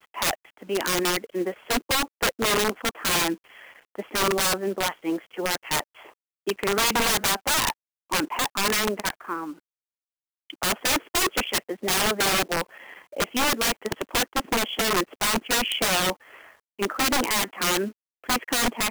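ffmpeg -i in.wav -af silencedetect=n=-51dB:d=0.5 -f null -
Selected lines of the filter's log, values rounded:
silence_start: 9.59
silence_end: 10.50 | silence_duration: 0.91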